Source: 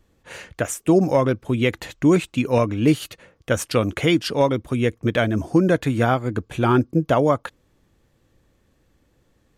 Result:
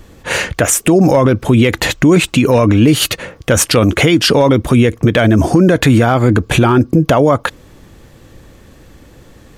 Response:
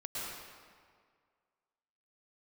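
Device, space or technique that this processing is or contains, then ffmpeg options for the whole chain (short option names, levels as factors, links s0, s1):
loud club master: -af "acompressor=threshold=0.112:ratio=2.5,asoftclip=type=hard:threshold=0.266,alimiter=level_in=13.3:limit=0.891:release=50:level=0:latency=1,volume=0.891"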